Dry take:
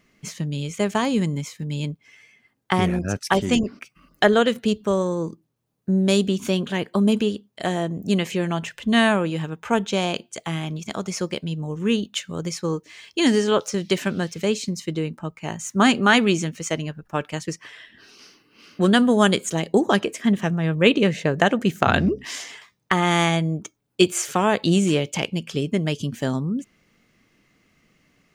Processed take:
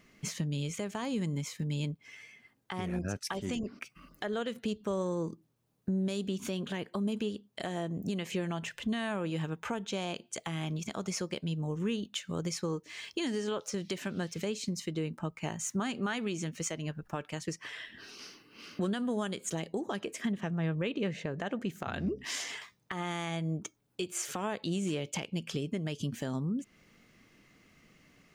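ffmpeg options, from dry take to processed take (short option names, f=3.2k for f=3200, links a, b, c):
-filter_complex "[0:a]asettb=1/sr,asplit=3[a][b][c];[a]atrim=end=20.324[d];[b]atrim=start=20.32:end=21.7,asetpts=PTS-STARTPTS,afade=t=in:d=0.004:c=qsin,afade=t=out:st=1.376:d=0.004:c=qsin,highshelf=f=6.8k:g=-10[e];[c]atrim=start=21.696[f];[d][e]acrossfade=d=0.004:c1=hsin:c2=qsin[g];[g][f]acrossfade=d=0.004:c1=qsin:c2=hsin,acompressor=threshold=-34dB:ratio=2.5,alimiter=limit=-23.5dB:level=0:latency=1:release=139"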